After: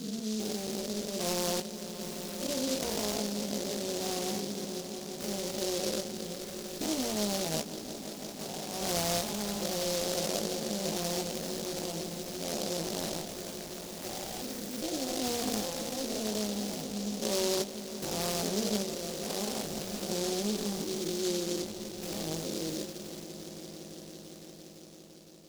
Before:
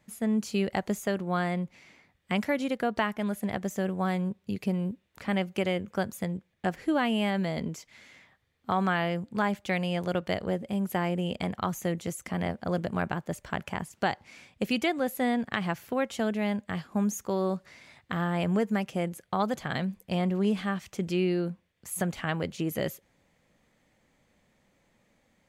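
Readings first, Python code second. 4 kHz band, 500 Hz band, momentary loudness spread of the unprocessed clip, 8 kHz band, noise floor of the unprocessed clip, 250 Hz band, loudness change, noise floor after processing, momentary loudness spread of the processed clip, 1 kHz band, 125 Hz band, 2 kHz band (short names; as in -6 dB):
+5.5 dB, -2.5 dB, 7 LU, +10.0 dB, -71 dBFS, -6.0 dB, -3.5 dB, -47 dBFS, 10 LU, -7.5 dB, -9.0 dB, -9.5 dB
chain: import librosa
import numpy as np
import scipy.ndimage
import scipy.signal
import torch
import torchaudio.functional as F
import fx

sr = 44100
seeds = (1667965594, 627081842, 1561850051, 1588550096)

p1 = fx.spec_steps(x, sr, hold_ms=400)
p2 = scipy.signal.sosfilt(scipy.signal.butter(2, 300.0, 'highpass', fs=sr, output='sos'), p1)
p3 = fx.tilt_eq(p2, sr, slope=1.5)
p4 = fx.sample_hold(p3, sr, seeds[0], rate_hz=1600.0, jitter_pct=0)
p5 = p3 + F.gain(torch.from_numpy(p4), -12.0).numpy()
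p6 = fx.env_phaser(p5, sr, low_hz=450.0, high_hz=3000.0, full_db=-31.0)
p7 = fx.air_absorb(p6, sr, metres=350.0)
p8 = fx.doubler(p7, sr, ms=19.0, db=-5)
p9 = fx.echo_swell(p8, sr, ms=170, loudest=5, wet_db=-16.0)
p10 = fx.noise_mod_delay(p9, sr, seeds[1], noise_hz=4900.0, depth_ms=0.2)
y = F.gain(torch.from_numpy(p10), 4.0).numpy()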